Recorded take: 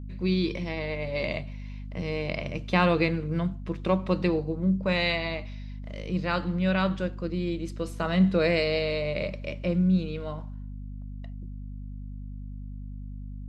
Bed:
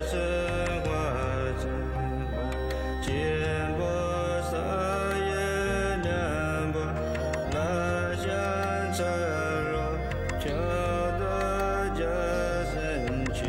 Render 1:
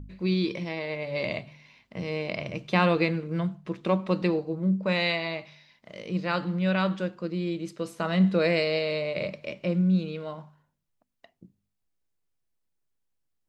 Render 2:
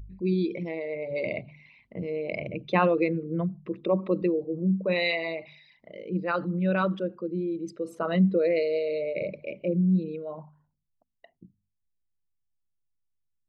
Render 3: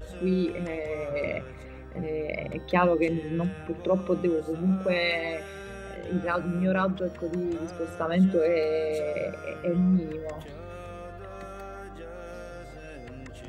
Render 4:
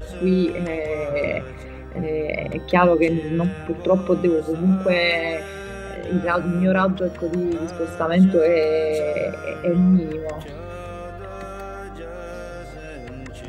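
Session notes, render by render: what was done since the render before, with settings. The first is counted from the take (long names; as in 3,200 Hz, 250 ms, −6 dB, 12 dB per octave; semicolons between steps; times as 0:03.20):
hum removal 50 Hz, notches 5
spectral envelope exaggerated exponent 2
mix in bed −13 dB
level +7 dB; brickwall limiter −3 dBFS, peak gain reduction 1 dB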